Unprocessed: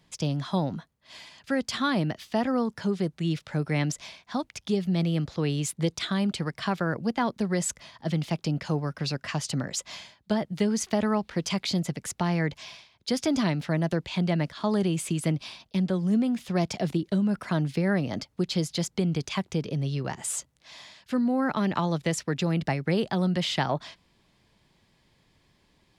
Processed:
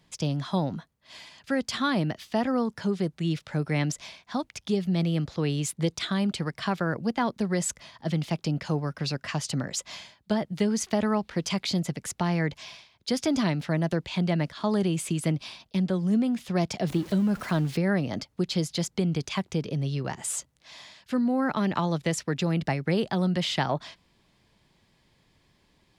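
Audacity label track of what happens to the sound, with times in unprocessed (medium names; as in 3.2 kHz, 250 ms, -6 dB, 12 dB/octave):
16.870000	17.770000	jump at every zero crossing of -38.5 dBFS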